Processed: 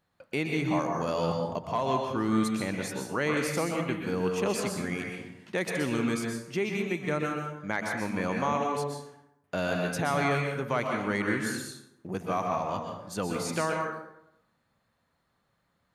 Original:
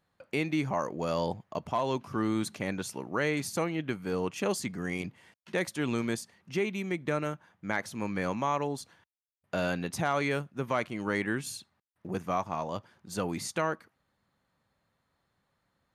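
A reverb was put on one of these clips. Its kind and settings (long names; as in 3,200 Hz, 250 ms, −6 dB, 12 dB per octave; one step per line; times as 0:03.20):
dense smooth reverb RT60 0.81 s, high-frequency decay 0.6×, pre-delay 110 ms, DRR 1 dB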